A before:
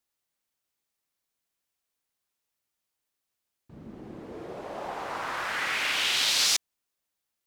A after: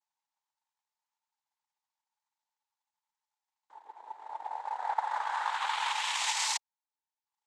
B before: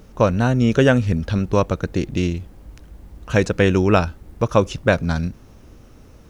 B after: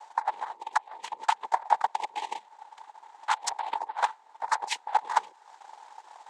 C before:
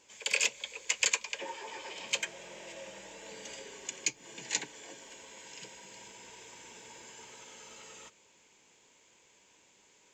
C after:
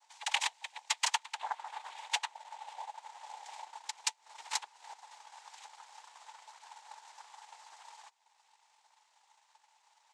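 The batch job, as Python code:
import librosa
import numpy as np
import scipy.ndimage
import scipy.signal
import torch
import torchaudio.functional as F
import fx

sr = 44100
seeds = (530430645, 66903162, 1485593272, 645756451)

y = fx.noise_vocoder(x, sr, seeds[0], bands=6)
y = fx.over_compress(y, sr, threshold_db=-24.0, ratio=-0.5)
y = fx.ladder_highpass(y, sr, hz=830.0, resonance_pct=80)
y = fx.transient(y, sr, attack_db=6, sustain_db=-7)
y = F.gain(torch.from_numpy(y), 4.5).numpy()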